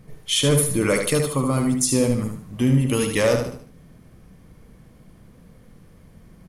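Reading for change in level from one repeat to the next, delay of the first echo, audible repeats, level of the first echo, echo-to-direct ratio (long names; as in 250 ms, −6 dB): −9.0 dB, 75 ms, 4, −6.0 dB, −5.5 dB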